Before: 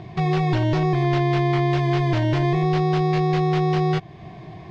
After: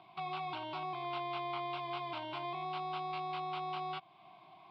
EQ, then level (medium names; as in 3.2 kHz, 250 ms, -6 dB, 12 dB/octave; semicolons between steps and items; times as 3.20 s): high-pass 600 Hz 12 dB/octave; treble shelf 5 kHz -8.5 dB; static phaser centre 1.8 kHz, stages 6; -7.5 dB